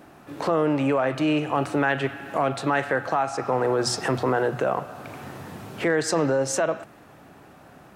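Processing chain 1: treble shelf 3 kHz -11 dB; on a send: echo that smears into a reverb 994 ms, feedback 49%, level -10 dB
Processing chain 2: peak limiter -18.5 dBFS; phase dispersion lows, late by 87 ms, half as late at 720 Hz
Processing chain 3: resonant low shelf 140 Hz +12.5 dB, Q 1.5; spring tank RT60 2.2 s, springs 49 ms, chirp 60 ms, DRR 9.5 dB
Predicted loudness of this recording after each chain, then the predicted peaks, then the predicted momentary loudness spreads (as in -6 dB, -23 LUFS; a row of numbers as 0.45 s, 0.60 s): -25.5 LUFS, -29.0 LUFS, -24.5 LUFS; -10.5 dBFS, -15.0 dBFS, -9.0 dBFS; 10 LU, 12 LU, 11 LU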